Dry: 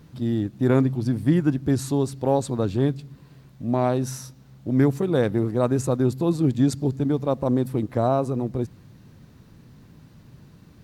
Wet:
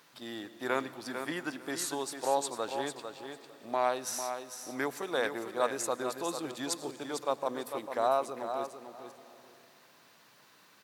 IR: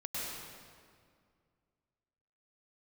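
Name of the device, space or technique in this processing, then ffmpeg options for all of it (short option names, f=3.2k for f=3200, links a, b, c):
compressed reverb return: -filter_complex "[0:a]highpass=860,aecho=1:1:449|898:0.398|0.0597,asplit=2[a][b];[1:a]atrim=start_sample=2205[c];[b][c]afir=irnorm=-1:irlink=0,acompressor=threshold=-42dB:ratio=4,volume=-9dB[d];[a][d]amix=inputs=2:normalize=0"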